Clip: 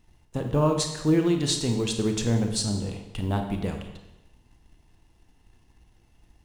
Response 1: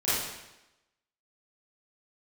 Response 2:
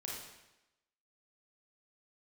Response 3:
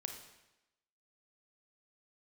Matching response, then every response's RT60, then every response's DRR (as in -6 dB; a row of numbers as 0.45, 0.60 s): 3; 0.95, 0.95, 0.95 s; -13.5, -4.0, 4.0 dB